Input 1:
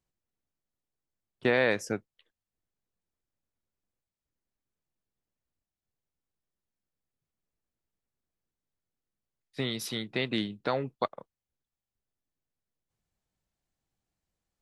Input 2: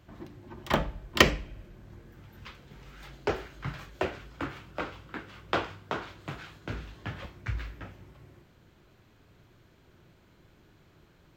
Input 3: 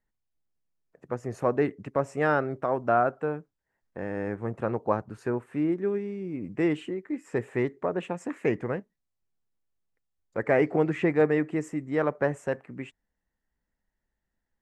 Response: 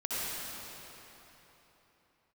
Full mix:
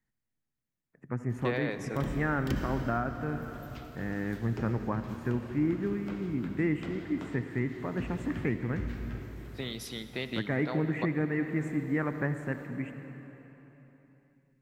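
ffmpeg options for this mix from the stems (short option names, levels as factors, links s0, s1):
-filter_complex "[0:a]volume=0.501,asplit=2[s0][s1];[s1]volume=0.141[s2];[1:a]equalizer=f=12000:w=0.44:g=11.5,acrossover=split=300[s3][s4];[s4]acompressor=threshold=0.00158:ratio=2[s5];[s3][s5]amix=inputs=2:normalize=0,adelay=1300,volume=0.794,asplit=2[s6][s7];[s7]volume=0.335[s8];[2:a]equalizer=f=125:t=o:w=1:g=10,equalizer=f=250:t=o:w=1:g=8,equalizer=f=500:t=o:w=1:g=-5,equalizer=f=2000:t=o:w=1:g=10,equalizer=f=4000:t=o:w=1:g=-11,deesser=0.95,equalizer=f=620:t=o:w=0.77:g=-2,volume=0.422,asplit=3[s9][s10][s11];[s10]volume=0.2[s12];[s11]apad=whole_len=558614[s13];[s6][s13]sidechaincompress=threshold=0.0316:ratio=8:attack=16:release=763[s14];[3:a]atrim=start_sample=2205[s15];[s2][s8][s12]amix=inputs=3:normalize=0[s16];[s16][s15]afir=irnorm=-1:irlink=0[s17];[s0][s14][s9][s17]amix=inputs=4:normalize=0,alimiter=limit=0.112:level=0:latency=1:release=460"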